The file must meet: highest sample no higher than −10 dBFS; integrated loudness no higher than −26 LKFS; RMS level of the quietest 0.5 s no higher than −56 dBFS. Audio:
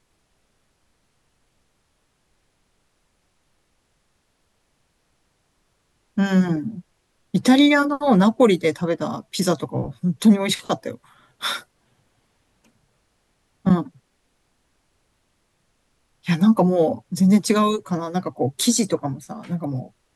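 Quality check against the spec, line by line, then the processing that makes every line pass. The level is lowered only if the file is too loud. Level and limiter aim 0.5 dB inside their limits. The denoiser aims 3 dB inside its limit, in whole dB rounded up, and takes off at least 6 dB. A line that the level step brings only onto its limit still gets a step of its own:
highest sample −4.5 dBFS: out of spec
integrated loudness −20.5 LKFS: out of spec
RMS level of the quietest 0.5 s −68 dBFS: in spec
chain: level −6 dB

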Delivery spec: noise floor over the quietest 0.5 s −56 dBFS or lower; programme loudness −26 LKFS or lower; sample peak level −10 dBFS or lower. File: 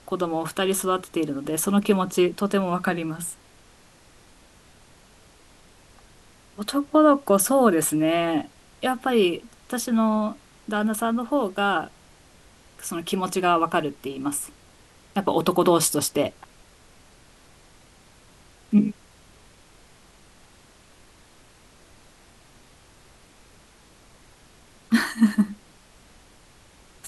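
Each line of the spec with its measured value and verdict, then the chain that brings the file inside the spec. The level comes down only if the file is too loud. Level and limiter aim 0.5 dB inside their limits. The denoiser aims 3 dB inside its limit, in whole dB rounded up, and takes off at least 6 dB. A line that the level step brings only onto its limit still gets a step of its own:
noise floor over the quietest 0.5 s −53 dBFS: out of spec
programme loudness −23.5 LKFS: out of spec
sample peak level −4.5 dBFS: out of spec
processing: broadband denoise 6 dB, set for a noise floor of −53 dBFS
level −3 dB
brickwall limiter −10.5 dBFS

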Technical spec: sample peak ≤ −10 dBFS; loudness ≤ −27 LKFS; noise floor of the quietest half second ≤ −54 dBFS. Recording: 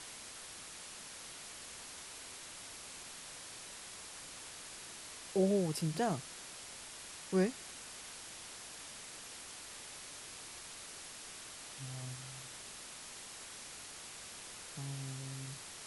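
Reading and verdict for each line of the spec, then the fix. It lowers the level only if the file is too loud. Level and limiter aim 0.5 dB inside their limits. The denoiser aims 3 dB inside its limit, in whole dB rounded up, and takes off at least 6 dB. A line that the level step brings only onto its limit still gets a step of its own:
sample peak −20.0 dBFS: in spec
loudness −42.5 LKFS: in spec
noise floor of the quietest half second −50 dBFS: out of spec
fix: broadband denoise 7 dB, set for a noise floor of −50 dBFS

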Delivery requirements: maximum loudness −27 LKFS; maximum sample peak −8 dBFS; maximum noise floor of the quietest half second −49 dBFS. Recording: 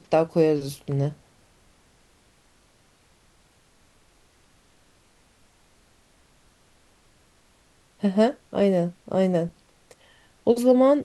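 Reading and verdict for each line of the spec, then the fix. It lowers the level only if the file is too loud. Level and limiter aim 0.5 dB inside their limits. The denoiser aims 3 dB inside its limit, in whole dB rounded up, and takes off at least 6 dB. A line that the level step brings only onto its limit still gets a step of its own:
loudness −23.0 LKFS: out of spec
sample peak −6.5 dBFS: out of spec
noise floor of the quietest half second −60 dBFS: in spec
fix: level −4.5 dB

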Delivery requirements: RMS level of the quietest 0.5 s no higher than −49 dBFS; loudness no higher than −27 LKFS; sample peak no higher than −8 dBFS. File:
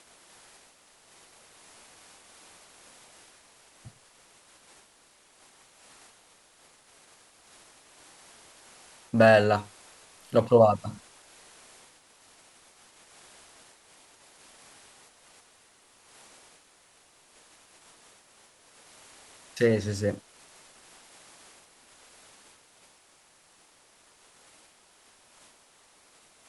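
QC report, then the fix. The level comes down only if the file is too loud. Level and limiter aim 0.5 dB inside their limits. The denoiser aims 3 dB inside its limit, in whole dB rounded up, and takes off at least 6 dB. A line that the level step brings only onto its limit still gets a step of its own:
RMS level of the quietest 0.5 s −61 dBFS: in spec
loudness −23.5 LKFS: out of spec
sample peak −7.0 dBFS: out of spec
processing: level −4 dB

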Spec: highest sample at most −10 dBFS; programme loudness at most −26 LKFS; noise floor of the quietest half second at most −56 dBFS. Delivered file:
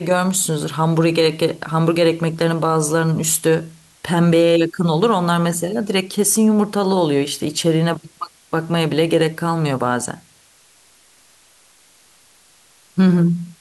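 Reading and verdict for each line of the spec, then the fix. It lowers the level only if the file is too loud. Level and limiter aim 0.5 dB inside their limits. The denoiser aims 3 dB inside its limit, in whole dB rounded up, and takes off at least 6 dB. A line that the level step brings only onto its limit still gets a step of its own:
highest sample −5.5 dBFS: out of spec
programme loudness −17.5 LKFS: out of spec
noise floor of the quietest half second −52 dBFS: out of spec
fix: level −9 dB

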